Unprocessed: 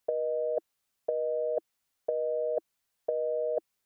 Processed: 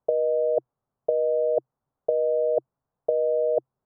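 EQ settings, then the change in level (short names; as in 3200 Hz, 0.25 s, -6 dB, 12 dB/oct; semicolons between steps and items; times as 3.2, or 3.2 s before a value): LPF 1100 Hz 24 dB/oct; air absorption 250 m; bell 130 Hz +11.5 dB 0.36 oct; +8.0 dB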